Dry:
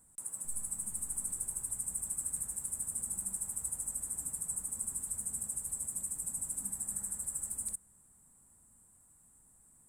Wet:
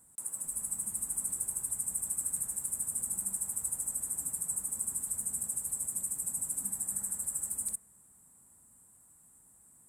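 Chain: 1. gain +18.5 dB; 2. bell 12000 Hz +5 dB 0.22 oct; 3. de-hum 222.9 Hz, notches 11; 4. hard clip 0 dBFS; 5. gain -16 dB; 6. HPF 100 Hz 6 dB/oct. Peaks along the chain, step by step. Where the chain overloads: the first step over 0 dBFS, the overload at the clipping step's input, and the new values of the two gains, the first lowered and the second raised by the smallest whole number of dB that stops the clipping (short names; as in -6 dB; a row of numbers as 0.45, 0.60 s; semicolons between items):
-3.0, -2.5, -2.5, -2.5, -18.5, -18.5 dBFS; no overload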